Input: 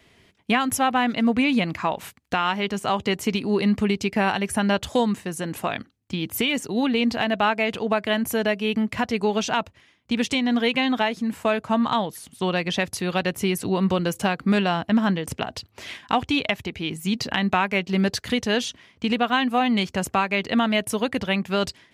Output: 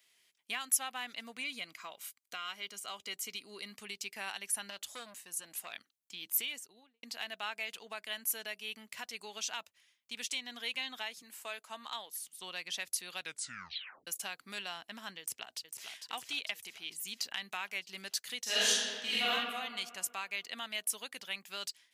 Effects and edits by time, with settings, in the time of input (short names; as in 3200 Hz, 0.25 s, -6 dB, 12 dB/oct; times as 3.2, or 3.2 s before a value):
1.43–3.72 notch comb 880 Hz
4.7–5.73 core saturation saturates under 890 Hz
6.34–7.03 studio fade out
11.22–12.15 HPF 260 Hz
13.18 tape stop 0.89 s
15.19–15.88 echo throw 0.45 s, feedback 60%, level -6.5 dB
18.43–19.3 reverb throw, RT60 1.8 s, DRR -11.5 dB
whole clip: differentiator; gain -3.5 dB